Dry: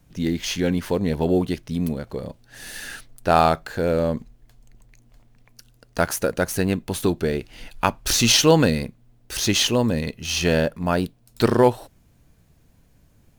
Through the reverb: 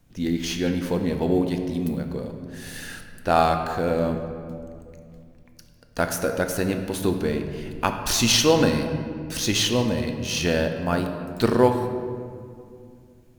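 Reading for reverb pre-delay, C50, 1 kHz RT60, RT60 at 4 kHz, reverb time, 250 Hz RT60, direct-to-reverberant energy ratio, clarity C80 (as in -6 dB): 3 ms, 6.5 dB, 2.1 s, 1.2 s, 2.3 s, 3.0 s, 5.0 dB, 8.0 dB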